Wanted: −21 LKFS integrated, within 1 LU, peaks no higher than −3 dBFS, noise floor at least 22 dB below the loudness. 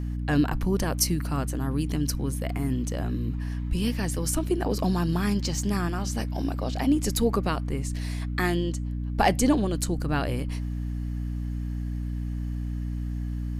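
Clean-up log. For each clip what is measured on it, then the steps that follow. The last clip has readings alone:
mains hum 60 Hz; hum harmonics up to 300 Hz; level of the hum −28 dBFS; integrated loudness −27.5 LKFS; sample peak −7.5 dBFS; target loudness −21.0 LKFS
→ hum removal 60 Hz, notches 5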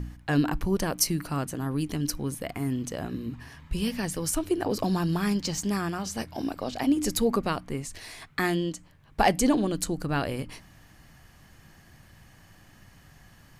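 mains hum none found; integrated loudness −28.5 LKFS; sample peak −8.0 dBFS; target loudness −21.0 LKFS
→ level +7.5 dB
brickwall limiter −3 dBFS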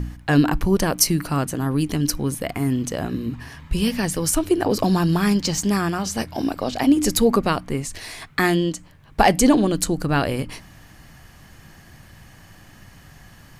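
integrated loudness −21.0 LKFS; sample peak −3.0 dBFS; background noise floor −48 dBFS

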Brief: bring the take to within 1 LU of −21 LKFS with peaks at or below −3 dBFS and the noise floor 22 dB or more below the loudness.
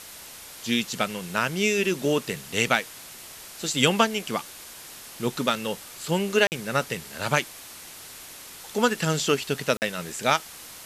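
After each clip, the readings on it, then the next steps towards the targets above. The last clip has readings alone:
number of dropouts 2; longest dropout 49 ms; background noise floor −43 dBFS; target noise floor −48 dBFS; integrated loudness −25.5 LKFS; sample peak −3.5 dBFS; target loudness −21.0 LKFS
→ repair the gap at 0:06.47/0:09.77, 49 ms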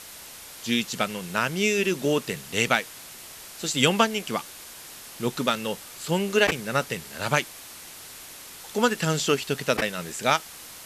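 number of dropouts 0; background noise floor −43 dBFS; target noise floor −48 dBFS
→ noise reduction from a noise print 6 dB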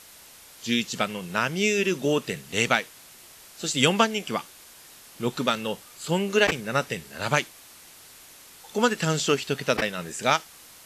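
background noise floor −49 dBFS; integrated loudness −25.5 LKFS; sample peak −3.5 dBFS; target loudness −21.0 LKFS
→ level +4.5 dB
brickwall limiter −3 dBFS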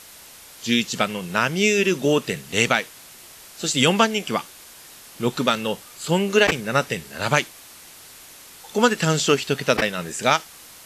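integrated loudness −21.5 LKFS; sample peak −3.0 dBFS; background noise floor −45 dBFS

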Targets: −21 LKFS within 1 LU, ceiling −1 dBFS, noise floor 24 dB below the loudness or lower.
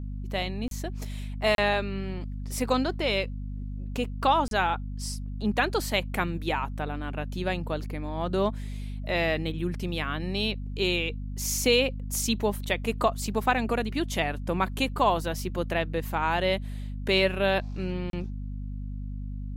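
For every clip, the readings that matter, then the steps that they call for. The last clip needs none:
number of dropouts 4; longest dropout 32 ms; mains hum 50 Hz; hum harmonics up to 250 Hz; level of the hum −32 dBFS; integrated loudness −28.5 LKFS; sample peak −10.0 dBFS; target loudness −21.0 LKFS
→ repair the gap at 0:00.68/0:01.55/0:04.48/0:18.10, 32 ms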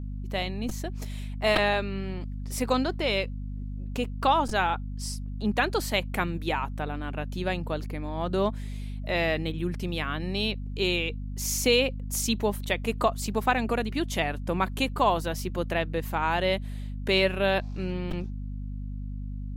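number of dropouts 0; mains hum 50 Hz; hum harmonics up to 250 Hz; level of the hum −32 dBFS
→ mains-hum notches 50/100/150/200/250 Hz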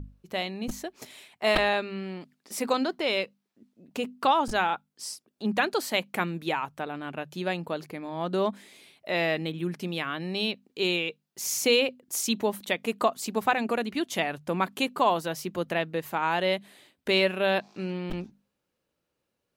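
mains hum none found; integrated loudness −28.5 LKFS; sample peak −10.5 dBFS; target loudness −21.0 LKFS
→ level +7.5 dB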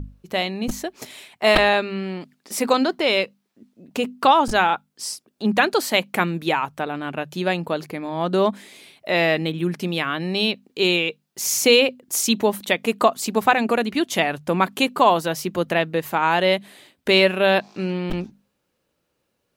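integrated loudness −21.0 LKFS; sample peak −3.0 dBFS; background noise floor −74 dBFS

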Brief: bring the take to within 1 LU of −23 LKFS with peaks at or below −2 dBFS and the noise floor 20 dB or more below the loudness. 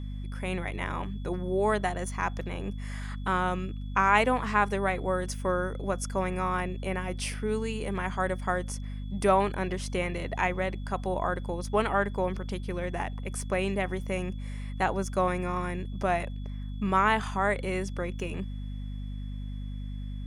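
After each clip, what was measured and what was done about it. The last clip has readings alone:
mains hum 50 Hz; hum harmonics up to 250 Hz; level of the hum −33 dBFS; interfering tone 3,400 Hz; level of the tone −58 dBFS; integrated loudness −30.0 LKFS; sample peak −7.5 dBFS; target loudness −23.0 LKFS
→ hum removal 50 Hz, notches 5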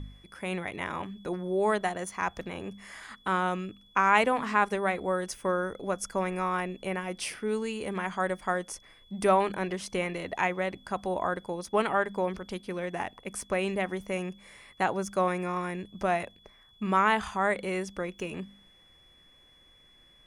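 mains hum none found; interfering tone 3,400 Hz; level of the tone −58 dBFS
→ notch filter 3,400 Hz, Q 30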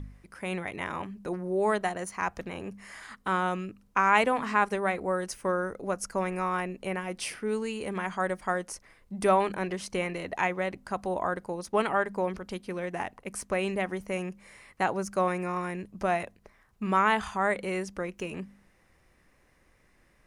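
interfering tone none found; integrated loudness −30.0 LKFS; sample peak −7.5 dBFS; target loudness −23.0 LKFS
→ level +7 dB
brickwall limiter −2 dBFS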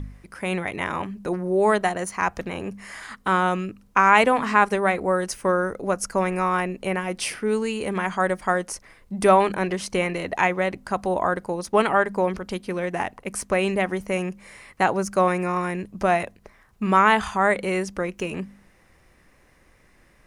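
integrated loudness −23.0 LKFS; sample peak −2.0 dBFS; background noise floor −57 dBFS

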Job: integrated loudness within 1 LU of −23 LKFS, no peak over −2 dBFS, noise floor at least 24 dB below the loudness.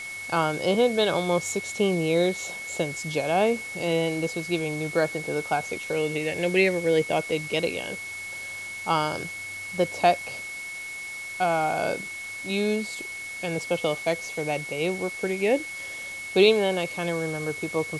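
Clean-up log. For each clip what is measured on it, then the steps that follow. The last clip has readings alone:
interfering tone 2,200 Hz; level of the tone −34 dBFS; background noise floor −36 dBFS; target noise floor −50 dBFS; integrated loudness −26.0 LKFS; sample peak −6.5 dBFS; target loudness −23.0 LKFS
→ notch filter 2,200 Hz, Q 30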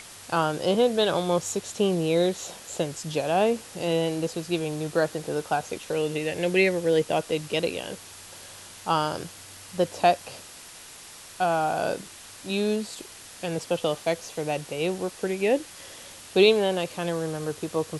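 interfering tone none found; background noise floor −45 dBFS; target noise floor −50 dBFS
→ broadband denoise 6 dB, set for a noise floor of −45 dBFS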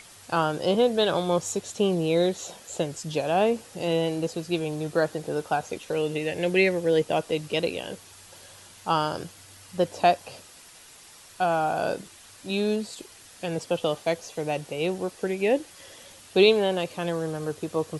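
background noise floor −50 dBFS; target noise floor −51 dBFS
→ broadband denoise 6 dB, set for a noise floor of −50 dBFS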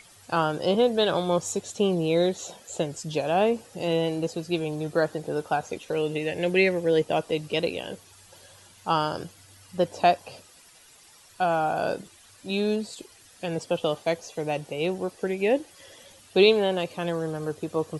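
background noise floor −54 dBFS; integrated loudness −26.5 LKFS; sample peak −7.0 dBFS; target loudness −23.0 LKFS
→ level +3.5 dB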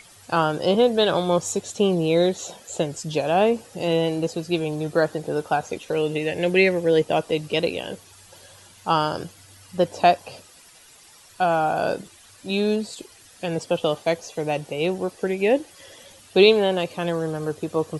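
integrated loudness −23.0 LKFS; sample peak −3.5 dBFS; background noise floor −50 dBFS

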